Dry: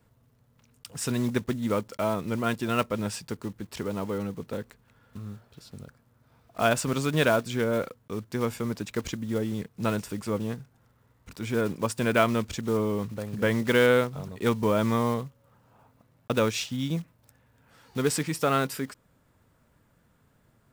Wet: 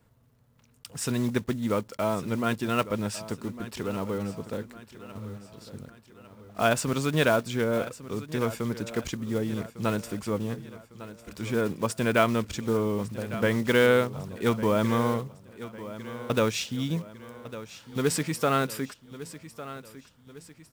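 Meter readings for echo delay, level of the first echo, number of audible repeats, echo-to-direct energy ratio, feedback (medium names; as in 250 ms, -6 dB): 1153 ms, -15.0 dB, 3, -14.0 dB, 46%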